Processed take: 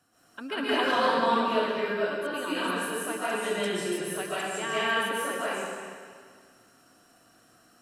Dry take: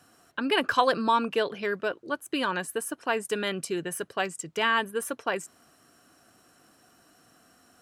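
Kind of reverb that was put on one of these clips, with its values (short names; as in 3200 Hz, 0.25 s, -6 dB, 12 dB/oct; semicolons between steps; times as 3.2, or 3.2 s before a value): digital reverb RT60 1.9 s, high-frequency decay 0.95×, pre-delay 0.1 s, DRR -10 dB; gain -10 dB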